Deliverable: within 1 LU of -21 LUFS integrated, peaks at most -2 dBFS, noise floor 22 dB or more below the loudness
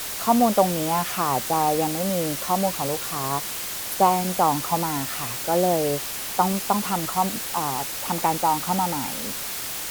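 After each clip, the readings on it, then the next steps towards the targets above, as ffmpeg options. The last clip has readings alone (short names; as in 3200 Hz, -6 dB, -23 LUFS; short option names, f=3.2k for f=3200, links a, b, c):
noise floor -31 dBFS; noise floor target -46 dBFS; loudness -23.5 LUFS; peak -4.0 dBFS; loudness target -21.0 LUFS
-> -af "afftdn=nr=15:nf=-31"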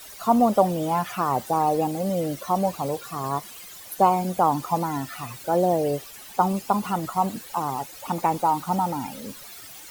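noise floor -43 dBFS; noise floor target -47 dBFS
-> -af "afftdn=nr=6:nf=-43"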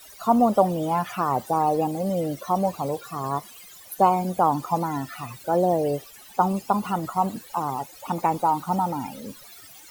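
noise floor -47 dBFS; loudness -24.5 LUFS; peak -4.5 dBFS; loudness target -21.0 LUFS
-> -af "volume=3.5dB,alimiter=limit=-2dB:level=0:latency=1"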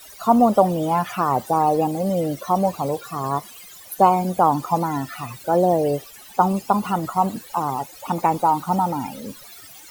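loudness -21.0 LUFS; peak -2.0 dBFS; noise floor -43 dBFS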